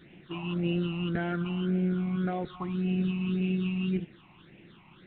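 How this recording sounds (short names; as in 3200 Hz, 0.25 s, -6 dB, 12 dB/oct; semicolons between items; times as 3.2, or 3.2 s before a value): a quantiser's noise floor 8-bit, dither triangular; phasing stages 8, 1.8 Hz, lowest notch 460–1200 Hz; G.726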